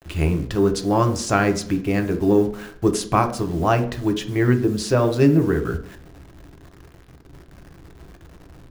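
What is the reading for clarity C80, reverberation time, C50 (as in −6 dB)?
15.5 dB, 0.55 s, 11.5 dB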